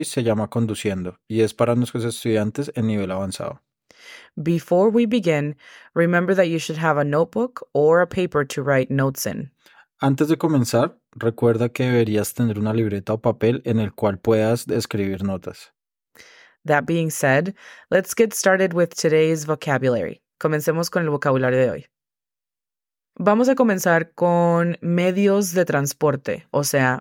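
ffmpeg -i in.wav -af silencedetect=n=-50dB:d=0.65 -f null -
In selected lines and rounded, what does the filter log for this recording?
silence_start: 21.86
silence_end: 23.16 | silence_duration: 1.31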